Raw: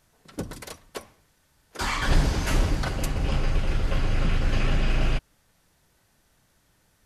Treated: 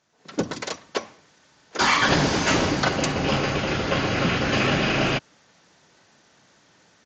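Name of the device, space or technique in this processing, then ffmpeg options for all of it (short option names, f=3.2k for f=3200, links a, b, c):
Bluetooth headset: -af "highpass=190,dynaudnorm=f=160:g=3:m=13dB,aresample=16000,aresample=44100,volume=-3dB" -ar 16000 -c:a sbc -b:a 64k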